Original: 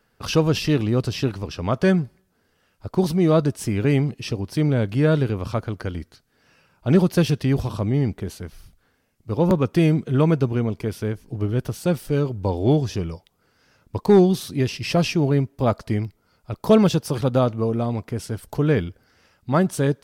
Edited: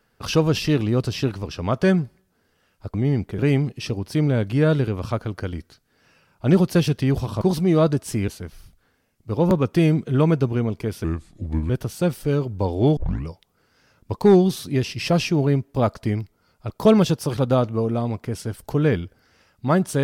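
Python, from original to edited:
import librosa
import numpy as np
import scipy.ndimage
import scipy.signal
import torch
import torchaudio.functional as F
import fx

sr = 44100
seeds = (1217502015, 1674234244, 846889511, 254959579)

y = fx.edit(x, sr, fx.swap(start_s=2.94, length_s=0.87, other_s=7.83, other_length_s=0.45),
    fx.speed_span(start_s=11.04, length_s=0.5, speed=0.76),
    fx.tape_start(start_s=12.81, length_s=0.3), tone=tone)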